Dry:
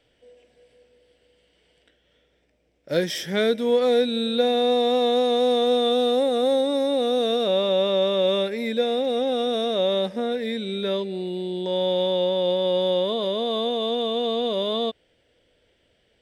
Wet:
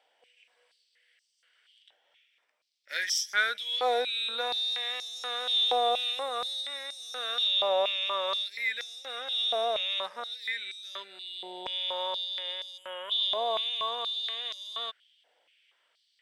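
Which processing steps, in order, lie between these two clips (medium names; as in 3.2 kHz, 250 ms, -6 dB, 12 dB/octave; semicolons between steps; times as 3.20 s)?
time-frequency box 12.78–13.11 s, 3.3–6.7 kHz -25 dB; step-sequenced high-pass 4.2 Hz 820–5700 Hz; trim -4.5 dB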